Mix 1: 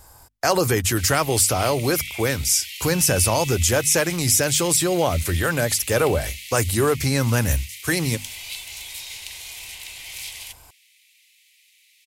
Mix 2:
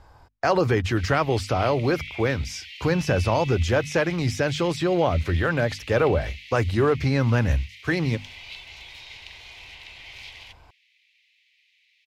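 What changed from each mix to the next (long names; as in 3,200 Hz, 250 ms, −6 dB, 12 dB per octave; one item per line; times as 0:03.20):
master: add high-frequency loss of the air 250 metres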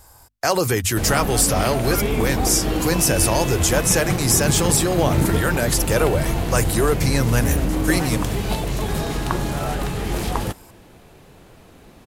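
background: remove Butterworth high-pass 2,000 Hz 96 dB per octave
master: remove high-frequency loss of the air 250 metres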